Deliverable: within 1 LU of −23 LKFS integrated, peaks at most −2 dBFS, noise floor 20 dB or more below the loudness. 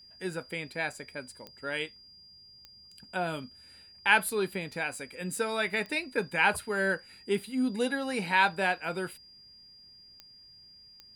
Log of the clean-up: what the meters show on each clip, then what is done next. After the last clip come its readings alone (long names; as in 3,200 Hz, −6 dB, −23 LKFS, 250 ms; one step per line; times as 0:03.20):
number of clicks 6; interfering tone 4,800 Hz; level of the tone −52 dBFS; integrated loudness −30.5 LKFS; sample peak −8.0 dBFS; target loudness −23.0 LKFS
→ click removal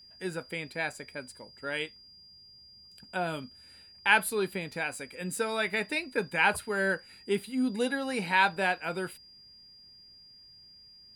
number of clicks 0; interfering tone 4,800 Hz; level of the tone −52 dBFS
→ notch filter 4,800 Hz, Q 30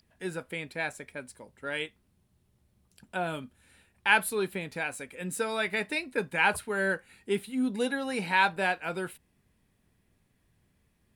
interfering tone none found; integrated loudness −30.0 LKFS; sample peak −8.0 dBFS; target loudness −23.0 LKFS
→ level +7 dB
brickwall limiter −2 dBFS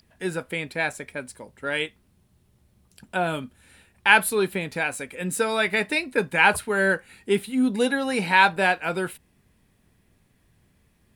integrated loudness −23.5 LKFS; sample peak −2.0 dBFS; background noise floor −64 dBFS